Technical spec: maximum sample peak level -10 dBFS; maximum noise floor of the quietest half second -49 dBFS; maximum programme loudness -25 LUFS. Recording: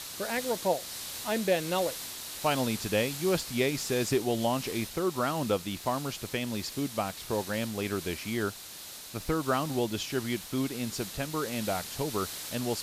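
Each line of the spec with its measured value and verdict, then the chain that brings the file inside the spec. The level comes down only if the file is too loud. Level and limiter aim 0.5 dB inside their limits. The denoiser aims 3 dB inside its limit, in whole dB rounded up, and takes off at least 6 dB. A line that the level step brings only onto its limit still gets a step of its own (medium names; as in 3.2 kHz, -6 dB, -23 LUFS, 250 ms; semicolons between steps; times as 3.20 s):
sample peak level -13.0 dBFS: pass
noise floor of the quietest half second -45 dBFS: fail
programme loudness -31.0 LUFS: pass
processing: noise reduction 7 dB, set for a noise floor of -45 dBFS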